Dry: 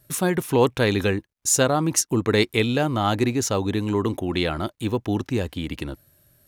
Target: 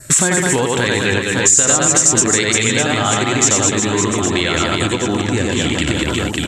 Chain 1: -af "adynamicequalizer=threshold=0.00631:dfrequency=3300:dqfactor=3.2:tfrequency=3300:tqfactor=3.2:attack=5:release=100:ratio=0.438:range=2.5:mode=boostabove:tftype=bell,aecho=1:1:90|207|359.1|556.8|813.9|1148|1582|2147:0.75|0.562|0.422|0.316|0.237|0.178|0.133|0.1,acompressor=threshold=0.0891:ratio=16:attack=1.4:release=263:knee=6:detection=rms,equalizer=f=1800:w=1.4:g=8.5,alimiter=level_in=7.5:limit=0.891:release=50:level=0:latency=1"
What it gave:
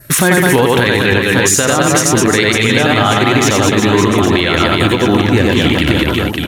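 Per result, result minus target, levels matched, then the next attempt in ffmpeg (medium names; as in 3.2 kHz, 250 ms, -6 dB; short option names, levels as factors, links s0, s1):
compression: peak gain reduction -7.5 dB; 8 kHz band -7.5 dB
-af "adynamicequalizer=threshold=0.00631:dfrequency=3300:dqfactor=3.2:tfrequency=3300:tqfactor=3.2:attack=5:release=100:ratio=0.438:range=2.5:mode=boostabove:tftype=bell,aecho=1:1:90|207|359.1|556.8|813.9|1148|1582|2147:0.75|0.562|0.422|0.316|0.237|0.178|0.133|0.1,acompressor=threshold=0.0355:ratio=16:attack=1.4:release=263:knee=6:detection=rms,equalizer=f=1800:w=1.4:g=8.5,alimiter=level_in=7.5:limit=0.891:release=50:level=0:latency=1"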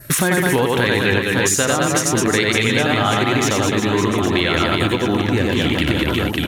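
8 kHz band -7.5 dB
-af "adynamicequalizer=threshold=0.00631:dfrequency=3300:dqfactor=3.2:tfrequency=3300:tqfactor=3.2:attack=5:release=100:ratio=0.438:range=2.5:mode=boostabove:tftype=bell,aecho=1:1:90|207|359.1|556.8|813.9|1148|1582|2147:0.75|0.562|0.422|0.316|0.237|0.178|0.133|0.1,acompressor=threshold=0.0355:ratio=16:attack=1.4:release=263:knee=6:detection=rms,lowpass=f=7600:t=q:w=13,equalizer=f=1800:w=1.4:g=8.5,alimiter=level_in=7.5:limit=0.891:release=50:level=0:latency=1"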